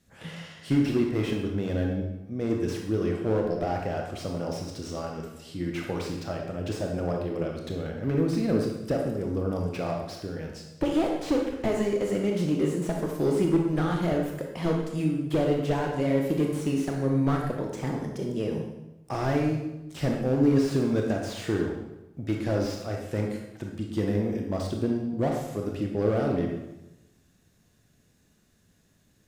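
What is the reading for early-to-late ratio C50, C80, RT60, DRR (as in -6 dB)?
3.0 dB, 5.5 dB, 1.0 s, 0.5 dB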